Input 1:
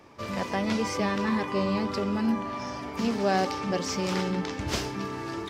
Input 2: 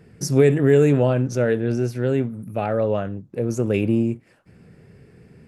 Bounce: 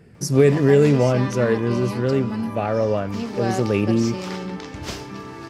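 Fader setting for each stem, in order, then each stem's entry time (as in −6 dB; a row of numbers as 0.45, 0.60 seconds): −1.5, +0.5 decibels; 0.15, 0.00 seconds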